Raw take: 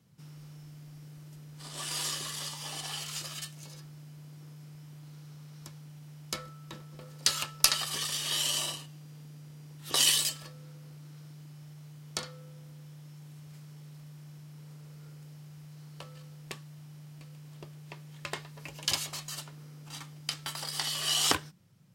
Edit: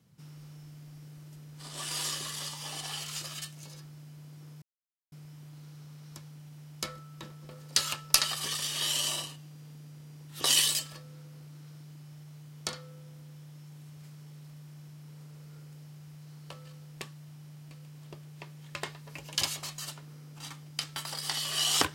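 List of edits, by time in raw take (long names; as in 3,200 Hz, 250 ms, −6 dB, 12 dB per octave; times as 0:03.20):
0:04.62: splice in silence 0.50 s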